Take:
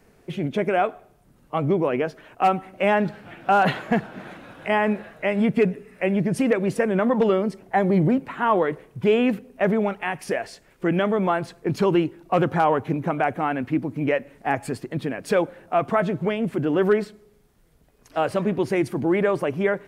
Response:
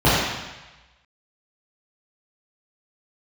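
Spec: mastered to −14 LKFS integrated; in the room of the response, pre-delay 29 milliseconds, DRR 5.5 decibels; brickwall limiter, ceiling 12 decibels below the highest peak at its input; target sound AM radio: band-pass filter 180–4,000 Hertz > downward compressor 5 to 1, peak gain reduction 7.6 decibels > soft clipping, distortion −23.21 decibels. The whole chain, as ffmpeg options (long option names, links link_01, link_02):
-filter_complex "[0:a]alimiter=limit=-19.5dB:level=0:latency=1,asplit=2[link_01][link_02];[1:a]atrim=start_sample=2205,adelay=29[link_03];[link_02][link_03]afir=irnorm=-1:irlink=0,volume=-30dB[link_04];[link_01][link_04]amix=inputs=2:normalize=0,highpass=180,lowpass=4000,acompressor=threshold=-27dB:ratio=5,asoftclip=threshold=-21.5dB,volume=19dB"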